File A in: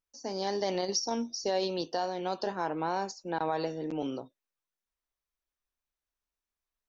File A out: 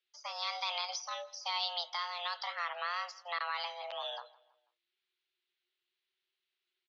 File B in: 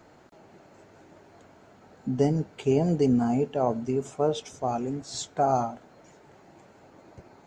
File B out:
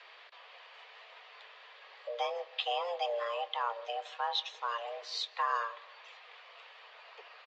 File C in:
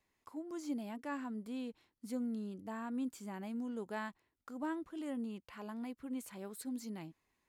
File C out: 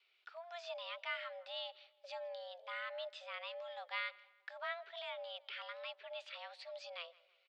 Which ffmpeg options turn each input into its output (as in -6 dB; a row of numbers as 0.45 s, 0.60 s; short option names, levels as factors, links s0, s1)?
-filter_complex "[0:a]tiltshelf=f=1500:g=-9,asplit=2[s0][s1];[s1]acompressor=threshold=0.00891:ratio=6,volume=1.41[s2];[s0][s2]amix=inputs=2:normalize=0,afreqshift=280,asplit=2[s3][s4];[s4]adelay=163,lowpass=f=2900:p=1,volume=0.0891,asplit=2[s5][s6];[s6]adelay=163,lowpass=f=2900:p=1,volume=0.46,asplit=2[s7][s8];[s8]adelay=163,lowpass=f=2900:p=1,volume=0.46[s9];[s3][s5][s7][s9]amix=inputs=4:normalize=0,highpass=f=190:t=q:w=0.5412,highpass=f=190:t=q:w=1.307,lowpass=f=3600:t=q:w=0.5176,lowpass=f=3600:t=q:w=0.7071,lowpass=f=3600:t=q:w=1.932,afreqshift=67,acrossover=split=710[s10][s11];[s11]crystalizer=i=5:c=0[s12];[s10][s12]amix=inputs=2:normalize=0,volume=0.447"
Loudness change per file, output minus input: -4.5 LU, -8.5 LU, -3.0 LU